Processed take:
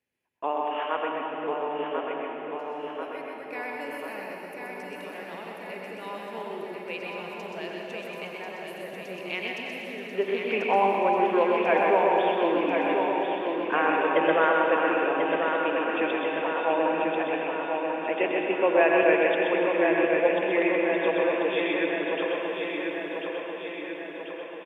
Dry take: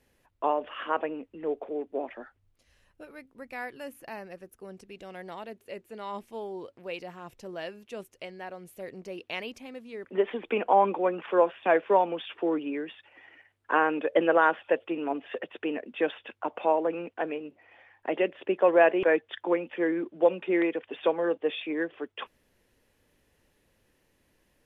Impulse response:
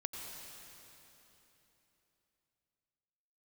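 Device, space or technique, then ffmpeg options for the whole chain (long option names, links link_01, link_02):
PA in a hall: -filter_complex "[0:a]highpass=110,equalizer=frequency=2400:width_type=o:width=0.58:gain=7.5,aecho=1:1:127:0.596[link_01];[1:a]atrim=start_sample=2205[link_02];[link_01][link_02]afir=irnorm=-1:irlink=0,agate=range=-15dB:threshold=-49dB:ratio=16:detection=peak,aecho=1:1:1040|2080|3120|4160|5200|6240|7280|8320:0.562|0.326|0.189|0.11|0.0636|0.0369|0.0214|0.0124"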